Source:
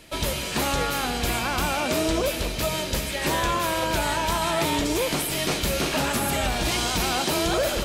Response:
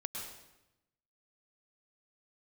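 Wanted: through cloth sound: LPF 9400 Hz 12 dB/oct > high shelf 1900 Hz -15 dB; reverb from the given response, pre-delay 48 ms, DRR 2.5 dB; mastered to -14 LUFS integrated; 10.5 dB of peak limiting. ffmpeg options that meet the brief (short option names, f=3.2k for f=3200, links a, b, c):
-filter_complex "[0:a]alimiter=limit=-23.5dB:level=0:latency=1,asplit=2[a][b];[1:a]atrim=start_sample=2205,adelay=48[c];[b][c]afir=irnorm=-1:irlink=0,volume=-3dB[d];[a][d]amix=inputs=2:normalize=0,lowpass=9.4k,highshelf=f=1.9k:g=-15,volume=19.5dB"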